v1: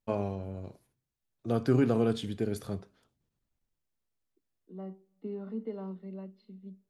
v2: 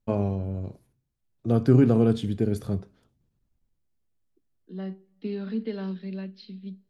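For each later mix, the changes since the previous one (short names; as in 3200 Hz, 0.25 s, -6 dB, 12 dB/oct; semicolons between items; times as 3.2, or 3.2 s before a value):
second voice: remove polynomial smoothing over 65 samples; master: add low shelf 380 Hz +10.5 dB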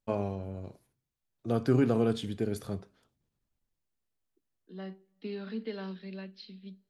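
master: add low shelf 380 Hz -10.5 dB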